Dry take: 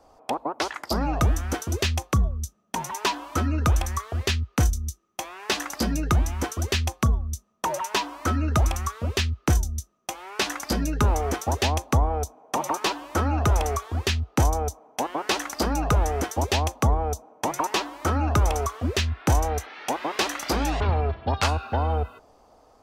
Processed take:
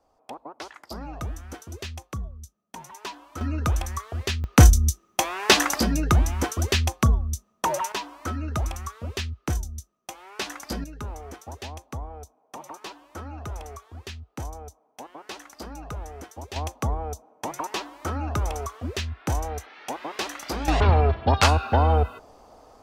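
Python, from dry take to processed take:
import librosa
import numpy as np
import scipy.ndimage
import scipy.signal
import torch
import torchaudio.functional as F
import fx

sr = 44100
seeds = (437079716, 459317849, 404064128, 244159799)

y = fx.gain(x, sr, db=fx.steps((0.0, -11.5), (3.41, -3.0), (4.44, 9.0), (5.8, 2.0), (7.92, -6.0), (10.84, -14.0), (16.56, -5.5), (20.68, 5.0)))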